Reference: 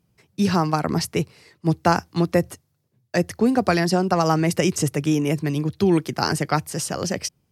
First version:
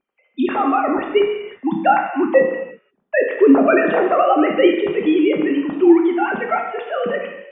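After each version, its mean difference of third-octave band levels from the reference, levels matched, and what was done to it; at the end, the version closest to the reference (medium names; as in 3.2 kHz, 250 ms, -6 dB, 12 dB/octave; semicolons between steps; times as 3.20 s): 14.5 dB: formants replaced by sine waves; level rider gain up to 6 dB; gated-style reverb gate 380 ms falling, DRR 1 dB; trim -1 dB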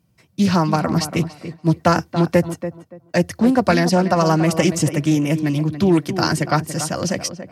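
3.0 dB: comb of notches 420 Hz; tape echo 284 ms, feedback 24%, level -9 dB, low-pass 1.4 kHz; loudspeaker Doppler distortion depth 0.19 ms; trim +4 dB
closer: second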